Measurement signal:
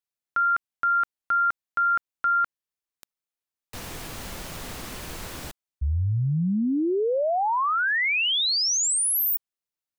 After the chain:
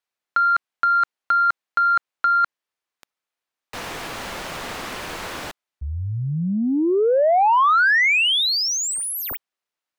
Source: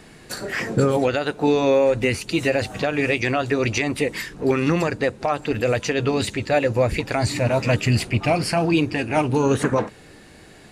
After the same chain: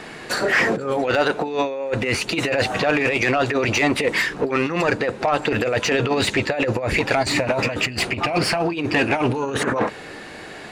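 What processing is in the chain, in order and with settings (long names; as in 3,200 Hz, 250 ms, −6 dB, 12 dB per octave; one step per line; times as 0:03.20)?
compressor whose output falls as the input rises −23 dBFS, ratio −0.5
mid-hump overdrive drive 17 dB, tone 2,100 Hz, clips at −6 dBFS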